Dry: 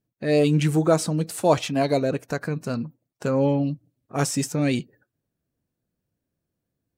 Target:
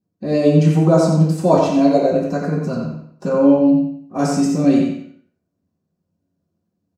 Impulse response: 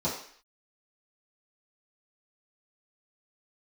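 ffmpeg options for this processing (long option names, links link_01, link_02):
-filter_complex "[0:a]asplit=2[link_01][link_02];[link_02]adelay=90,lowpass=frequency=4300:poles=1,volume=-3.5dB,asplit=2[link_03][link_04];[link_04]adelay=90,lowpass=frequency=4300:poles=1,volume=0.35,asplit=2[link_05][link_06];[link_06]adelay=90,lowpass=frequency=4300:poles=1,volume=0.35,asplit=2[link_07][link_08];[link_08]adelay=90,lowpass=frequency=4300:poles=1,volume=0.35,asplit=2[link_09][link_10];[link_10]adelay=90,lowpass=frequency=4300:poles=1,volume=0.35[link_11];[link_01][link_03][link_05][link_07][link_09][link_11]amix=inputs=6:normalize=0[link_12];[1:a]atrim=start_sample=2205,asetrate=48510,aresample=44100[link_13];[link_12][link_13]afir=irnorm=-1:irlink=0,volume=-7dB"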